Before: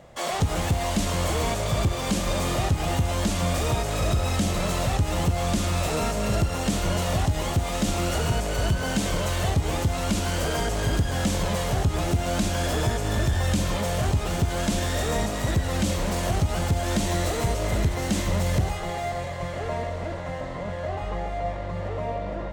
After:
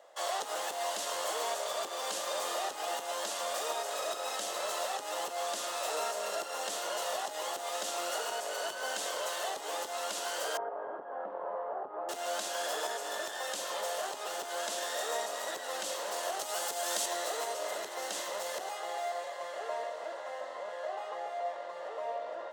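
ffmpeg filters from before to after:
-filter_complex "[0:a]asettb=1/sr,asplit=3[a][b][c];[a]atrim=end=10.574[d];[b]atrim=start=10.57:end=12.09,asetpts=PTS-STARTPTS,afade=t=in:d=0.004:c=qsin,afade=t=out:st=1.516:d=0.004:c=qsin,lowpass=f=1.2k:w=0.5412,lowpass=f=1.2k:w=1.3066[e];[c]atrim=start=12.086[f];[d][e]acrossfade=d=0.004:c1=hsin:c2=qsin[g];[g][f]acrossfade=d=0.004:c1=qsin:c2=hsin,asettb=1/sr,asplit=3[h][i][j];[h]atrim=end=16.394[k];[i]atrim=start=16.39:end=17.06,asetpts=PTS-STARTPTS,afade=t=in:d=0.004:c=qsin,afade=t=out:st=0.666:d=0.004:c=qsin,highshelf=f=4.7k:g=9[l];[j]atrim=start=17.056[m];[k][l]acrossfade=d=0.004:c1=hsin:c2=qsin[n];[n][m]acrossfade=d=0.004:c1=qsin:c2=hsin,highpass=f=500:w=0.5412,highpass=f=500:w=1.3066,equalizer=f=2.3k:t=o:w=0.24:g=-10,volume=-5dB"

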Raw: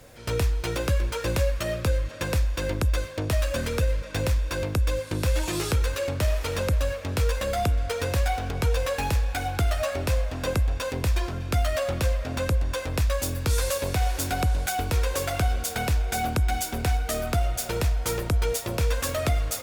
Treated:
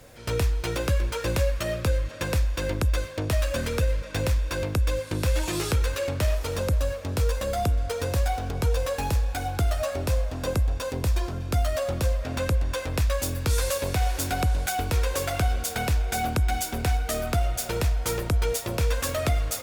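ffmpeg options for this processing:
-filter_complex "[0:a]asettb=1/sr,asplit=3[a][b][c];[a]atrim=end=6.354[d];[b]atrim=start=6.35:end=12.24,asetpts=PTS-STARTPTS,afade=t=in:d=0.004:c=qsin,afade=t=out:st=5.886:d=0.004:c=qsin,equalizer=f=2.2k:t=o:w=1.6:g=-5[e];[c]atrim=start=12.236[f];[d][e]acrossfade=d=0.004:c1=hsin:c2=qsin[g];[g][f]acrossfade=d=0.004:c1=qsin:c2=hsin"

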